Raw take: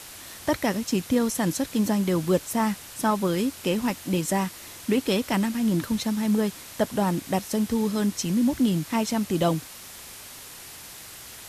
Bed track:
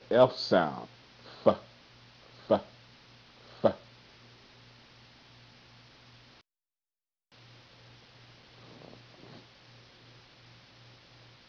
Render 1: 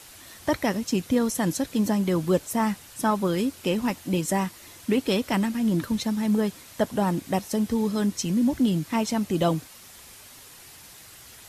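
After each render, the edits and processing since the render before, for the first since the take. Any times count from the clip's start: denoiser 6 dB, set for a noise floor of -43 dBFS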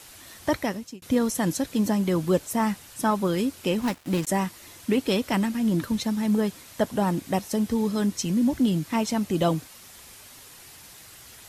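0.54–1.02 fade out; 3.81–4.27 switching dead time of 0.17 ms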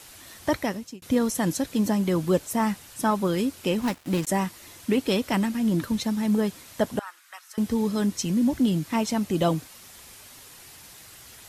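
6.99–7.58 ladder high-pass 1200 Hz, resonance 60%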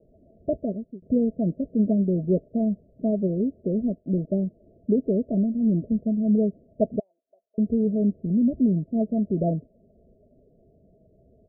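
Chebyshev low-pass 670 Hz, order 8; comb 4.7 ms, depth 44%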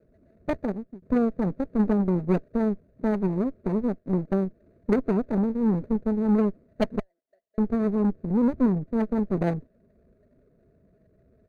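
median filter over 41 samples; added harmonics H 3 -22 dB, 4 -15 dB, 8 -30 dB, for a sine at -12 dBFS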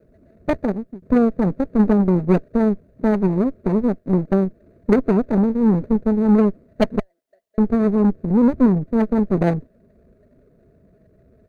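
gain +7 dB

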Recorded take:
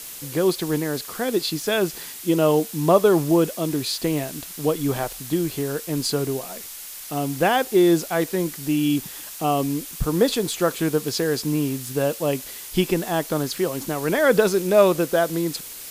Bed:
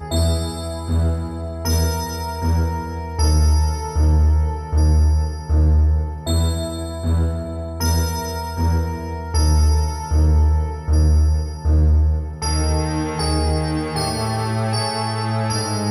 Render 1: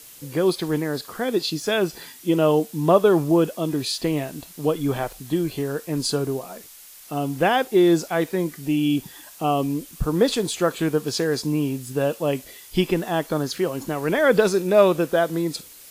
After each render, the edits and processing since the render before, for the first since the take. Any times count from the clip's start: noise print and reduce 8 dB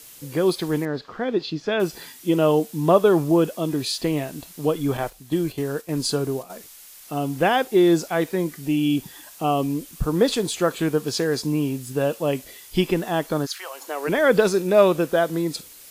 0.85–1.8 air absorption 210 m; 4.97–6.5 gate -35 dBFS, range -7 dB; 13.45–14.07 HPF 1200 Hz -> 310 Hz 24 dB/oct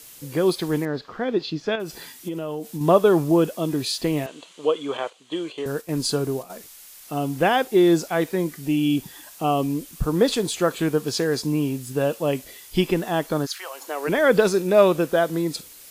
1.75–2.81 compressor 12:1, threshold -25 dBFS; 4.26–5.66 speaker cabinet 430–7200 Hz, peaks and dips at 480 Hz +5 dB, 750 Hz -4 dB, 1100 Hz +4 dB, 1700 Hz -3 dB, 3100 Hz +8 dB, 5300 Hz -10 dB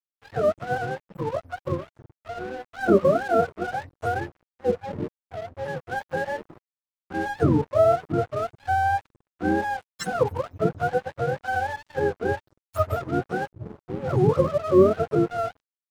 spectrum mirrored in octaves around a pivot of 480 Hz; crossover distortion -39 dBFS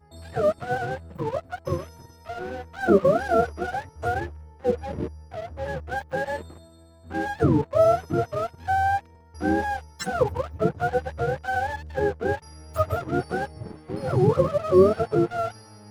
add bed -25.5 dB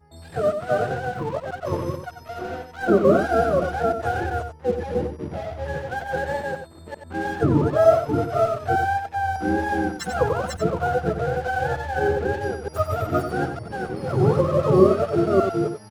reverse delay 0.302 s, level -2 dB; echo 92 ms -8 dB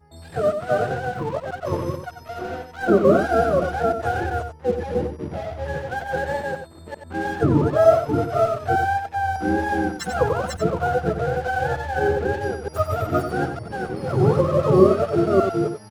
gain +1 dB

